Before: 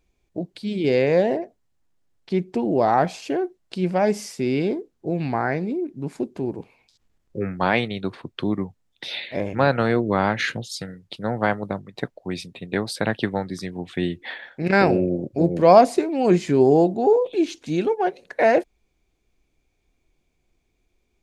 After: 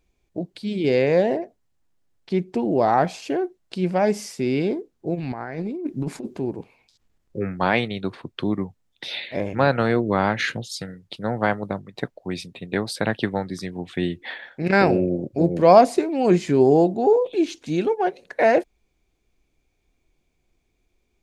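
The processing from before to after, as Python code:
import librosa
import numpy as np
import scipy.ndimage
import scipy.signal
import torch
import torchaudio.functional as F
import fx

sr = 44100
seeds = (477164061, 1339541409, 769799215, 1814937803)

y = fx.over_compress(x, sr, threshold_db=-29.0, ratio=-0.5, at=(5.14, 6.35), fade=0.02)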